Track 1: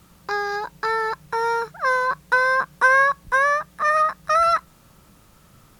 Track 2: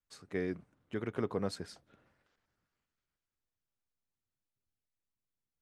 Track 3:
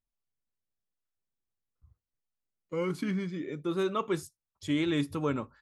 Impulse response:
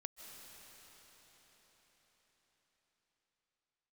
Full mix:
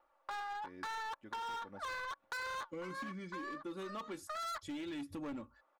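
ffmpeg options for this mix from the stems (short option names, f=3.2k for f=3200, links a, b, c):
-filter_complex "[0:a]highpass=f=620:w=0.5412,highpass=f=620:w=1.3066,adynamicsmooth=sensitivity=1:basefreq=910,flanger=delay=0:depth=6.3:regen=77:speed=0.89:shape=sinusoidal,volume=-3dB[a];[1:a]adelay=300,volume=-16.5dB[b];[2:a]aphaser=in_gain=1:out_gain=1:delay=4.6:decay=0.31:speed=0.38:type=triangular,volume=-7.5dB,asplit=2[c][d];[d]apad=whole_len=255427[e];[a][e]sidechaincompress=threshold=-60dB:ratio=4:attack=16:release=167[f];[f][b][c]amix=inputs=3:normalize=0,aecho=1:1:3.5:0.62,volume=32.5dB,asoftclip=hard,volume=-32.5dB,acompressor=threshold=-41dB:ratio=5"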